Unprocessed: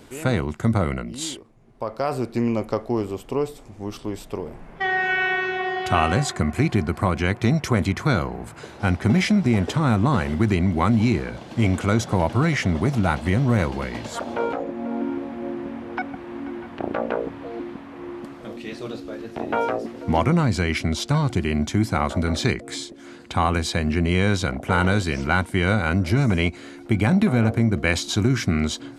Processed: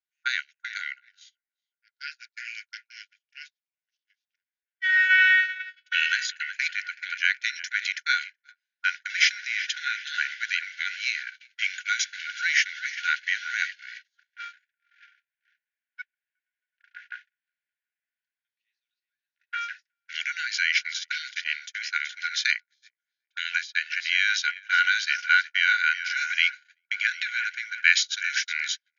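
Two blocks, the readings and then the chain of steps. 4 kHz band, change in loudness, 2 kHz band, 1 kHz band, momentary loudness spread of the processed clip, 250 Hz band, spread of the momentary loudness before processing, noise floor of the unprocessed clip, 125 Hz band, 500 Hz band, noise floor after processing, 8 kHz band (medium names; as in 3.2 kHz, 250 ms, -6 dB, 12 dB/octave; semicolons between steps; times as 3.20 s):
+3.5 dB, -2.0 dB, +5.0 dB, -9.5 dB, 19 LU, under -40 dB, 13 LU, -43 dBFS, under -40 dB, under -40 dB, under -85 dBFS, -0.5 dB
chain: filtered feedback delay 373 ms, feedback 54%, low-pass 2.3 kHz, level -9 dB; gate -22 dBFS, range -48 dB; brick-wall FIR band-pass 1.4–6.9 kHz; trim +5.5 dB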